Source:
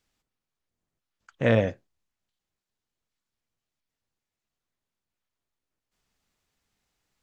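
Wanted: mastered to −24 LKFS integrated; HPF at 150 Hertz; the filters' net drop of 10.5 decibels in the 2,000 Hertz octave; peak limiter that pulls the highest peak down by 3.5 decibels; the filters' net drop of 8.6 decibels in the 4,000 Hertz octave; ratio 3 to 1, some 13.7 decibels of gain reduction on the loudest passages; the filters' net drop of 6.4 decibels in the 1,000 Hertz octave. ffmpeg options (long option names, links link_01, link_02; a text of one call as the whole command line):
ffmpeg -i in.wav -af "highpass=150,equalizer=frequency=1000:width_type=o:gain=-8.5,equalizer=frequency=2000:width_type=o:gain=-8.5,equalizer=frequency=4000:width_type=o:gain=-7,acompressor=threshold=-38dB:ratio=3,volume=18.5dB,alimiter=limit=-10dB:level=0:latency=1" out.wav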